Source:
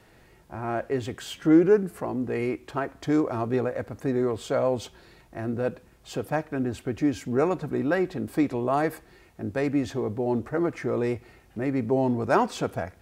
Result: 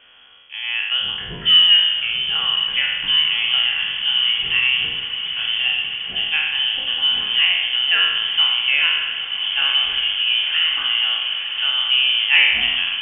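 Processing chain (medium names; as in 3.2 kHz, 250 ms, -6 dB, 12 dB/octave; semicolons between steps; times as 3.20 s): spectral sustain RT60 1.13 s; frequency inversion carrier 3.3 kHz; echo that smears into a reverb 992 ms, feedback 73%, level -9.5 dB; trim +4 dB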